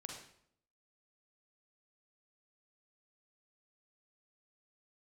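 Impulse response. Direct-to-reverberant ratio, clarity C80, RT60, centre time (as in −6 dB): 0.5 dB, 6.5 dB, 0.65 s, 41 ms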